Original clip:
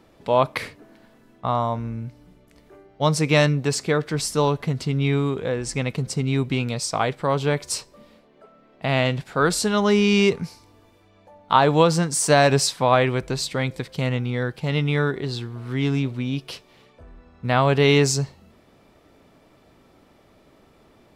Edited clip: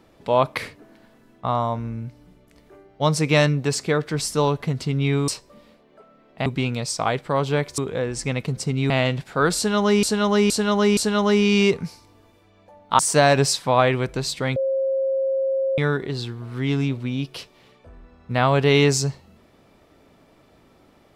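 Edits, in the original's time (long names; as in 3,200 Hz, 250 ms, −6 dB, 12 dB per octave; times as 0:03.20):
0:05.28–0:06.40: swap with 0:07.72–0:08.90
0:09.56–0:10.03: repeat, 4 plays
0:11.58–0:12.13: remove
0:13.70–0:14.92: beep over 536 Hz −19 dBFS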